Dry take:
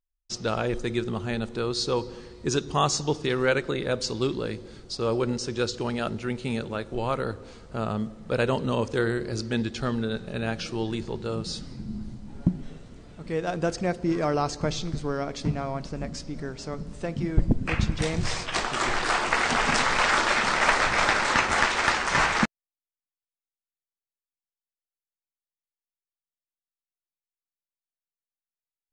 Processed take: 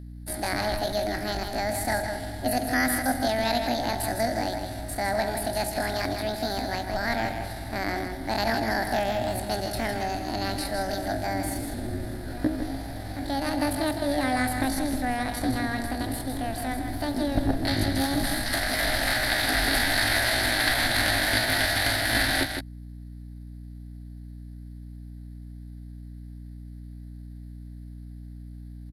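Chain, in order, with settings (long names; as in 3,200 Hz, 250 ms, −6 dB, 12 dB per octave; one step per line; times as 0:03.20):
compressor on every frequency bin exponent 0.6
EQ curve with evenly spaced ripples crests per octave 0.75, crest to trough 14 dB
pitch shifter +9.5 semitones
on a send: single-tap delay 158 ms −7 dB
on the sum: mains hum 60 Hz, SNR 12 dB
level −8 dB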